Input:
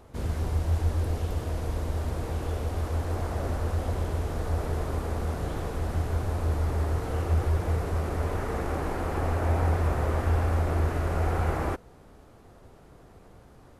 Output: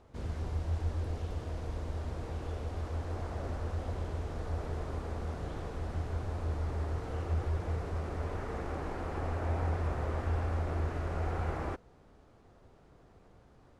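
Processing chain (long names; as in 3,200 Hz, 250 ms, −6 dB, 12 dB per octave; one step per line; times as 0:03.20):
low-pass filter 6,900 Hz 12 dB per octave
level −7.5 dB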